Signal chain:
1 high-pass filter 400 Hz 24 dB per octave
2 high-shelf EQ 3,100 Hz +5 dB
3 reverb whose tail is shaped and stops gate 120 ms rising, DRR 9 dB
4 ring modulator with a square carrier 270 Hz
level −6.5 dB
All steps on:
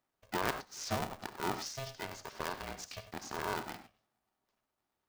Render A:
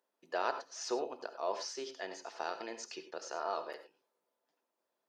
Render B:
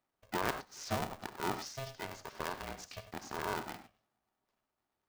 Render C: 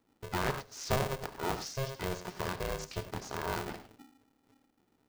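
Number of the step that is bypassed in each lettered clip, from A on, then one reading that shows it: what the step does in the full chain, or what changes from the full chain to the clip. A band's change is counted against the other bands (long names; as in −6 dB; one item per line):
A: 4, 500 Hz band +5.5 dB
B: 2, 8 kHz band −2.5 dB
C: 1, 125 Hz band +7.0 dB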